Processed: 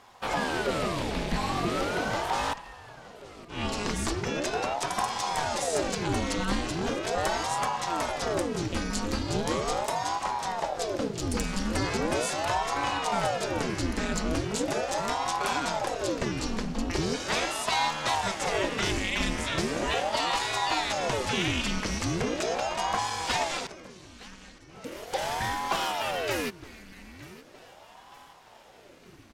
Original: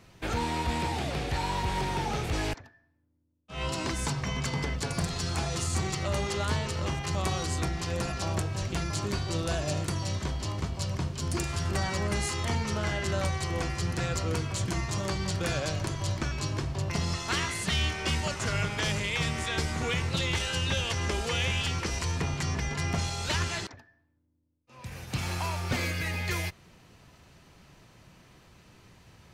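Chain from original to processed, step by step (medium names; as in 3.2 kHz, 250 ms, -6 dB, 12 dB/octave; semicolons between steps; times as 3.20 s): on a send: feedback delay 915 ms, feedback 49%, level -18.5 dB; on the sum: ring modulator with a swept carrier 510 Hz, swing 80%, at 0.39 Hz; trim +4 dB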